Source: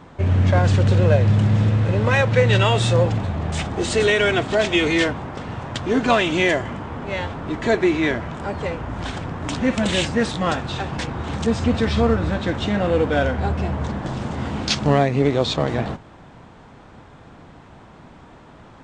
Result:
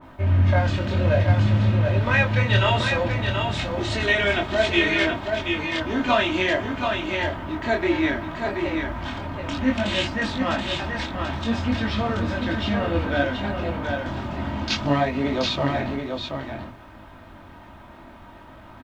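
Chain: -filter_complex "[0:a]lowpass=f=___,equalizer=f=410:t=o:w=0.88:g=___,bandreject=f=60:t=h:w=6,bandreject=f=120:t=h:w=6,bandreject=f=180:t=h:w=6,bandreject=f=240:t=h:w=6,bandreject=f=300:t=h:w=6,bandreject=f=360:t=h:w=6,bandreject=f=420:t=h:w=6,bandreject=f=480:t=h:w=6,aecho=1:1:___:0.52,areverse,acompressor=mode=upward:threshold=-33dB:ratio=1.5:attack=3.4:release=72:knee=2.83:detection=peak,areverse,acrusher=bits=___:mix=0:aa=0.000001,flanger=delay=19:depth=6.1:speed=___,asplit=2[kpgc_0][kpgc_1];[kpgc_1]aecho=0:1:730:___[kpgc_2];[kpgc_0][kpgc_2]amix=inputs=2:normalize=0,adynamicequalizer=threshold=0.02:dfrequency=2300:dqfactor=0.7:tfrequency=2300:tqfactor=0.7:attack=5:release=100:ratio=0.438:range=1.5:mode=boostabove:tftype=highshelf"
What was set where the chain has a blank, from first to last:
3900, -4.5, 3.2, 10, 0.59, 0.562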